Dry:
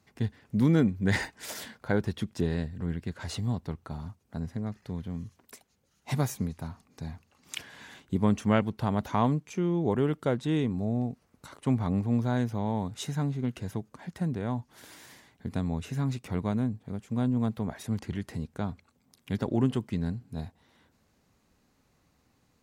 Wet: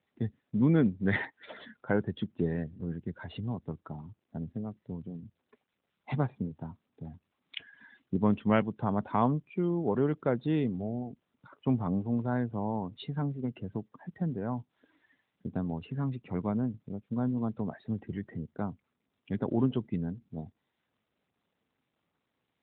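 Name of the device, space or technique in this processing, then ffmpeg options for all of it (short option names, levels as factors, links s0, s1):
mobile call with aggressive noise cancelling: -af "highpass=f=120:p=1,afftdn=nr=19:nf=-43" -ar 8000 -c:a libopencore_amrnb -b:a 12200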